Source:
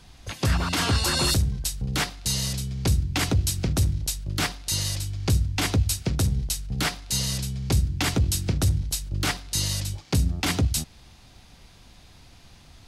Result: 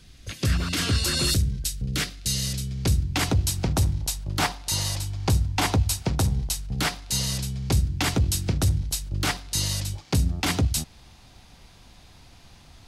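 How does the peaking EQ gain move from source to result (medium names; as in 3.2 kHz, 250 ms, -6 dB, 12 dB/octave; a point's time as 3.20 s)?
peaking EQ 870 Hz 0.85 oct
2.33 s -13.5 dB
2.85 s -2.5 dB
3.68 s +9 dB
6.38 s +9 dB
6.78 s +2 dB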